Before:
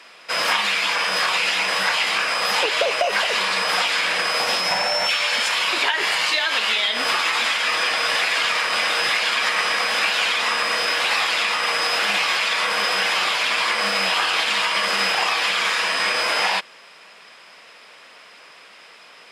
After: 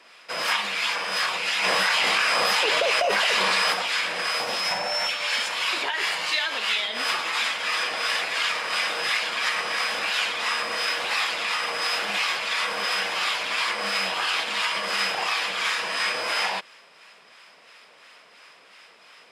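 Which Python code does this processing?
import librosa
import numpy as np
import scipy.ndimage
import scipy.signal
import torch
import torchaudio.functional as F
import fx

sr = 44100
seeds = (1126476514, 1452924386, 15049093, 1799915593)

y = fx.harmonic_tremolo(x, sr, hz=2.9, depth_pct=50, crossover_hz=900.0)
y = fx.env_flatten(y, sr, amount_pct=100, at=(1.62, 3.72), fade=0.02)
y = y * 10.0 ** (-3.0 / 20.0)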